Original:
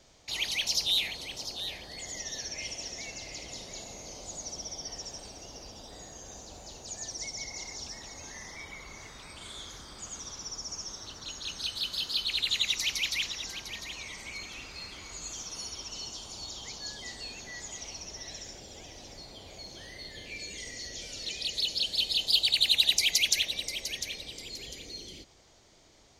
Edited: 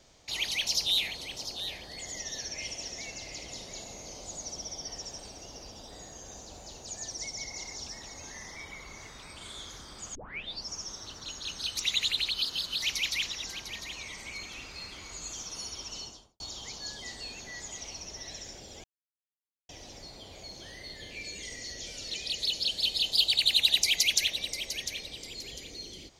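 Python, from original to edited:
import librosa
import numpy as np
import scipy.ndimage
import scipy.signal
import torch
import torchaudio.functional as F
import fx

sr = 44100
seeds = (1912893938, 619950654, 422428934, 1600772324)

y = fx.studio_fade_out(x, sr, start_s=15.96, length_s=0.44)
y = fx.edit(y, sr, fx.tape_start(start_s=10.15, length_s=0.54),
    fx.reverse_span(start_s=11.77, length_s=1.05),
    fx.insert_silence(at_s=18.84, length_s=0.85), tone=tone)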